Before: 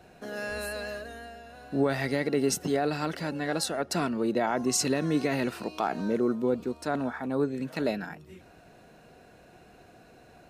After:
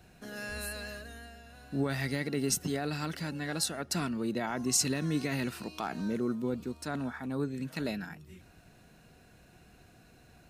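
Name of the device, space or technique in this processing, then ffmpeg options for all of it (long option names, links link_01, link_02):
smiley-face EQ: -af "lowshelf=frequency=190:gain=5.5,equalizer=frequency=550:width_type=o:width=1.9:gain=-8,highshelf=frequency=6500:gain=5.5,volume=-2.5dB"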